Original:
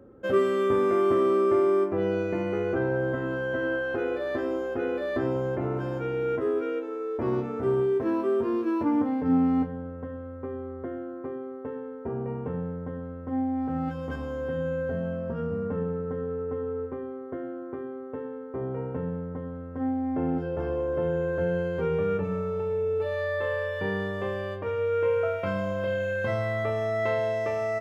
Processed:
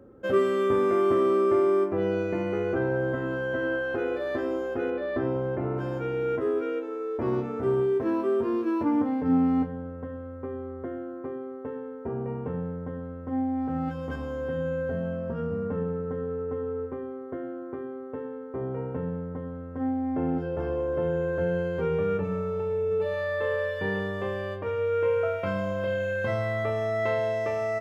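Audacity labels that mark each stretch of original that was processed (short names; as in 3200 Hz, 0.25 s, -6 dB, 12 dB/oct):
4.900000	5.780000	air absorption 190 m
22.370000	23.450000	echo throw 0.54 s, feedback 15%, level -10 dB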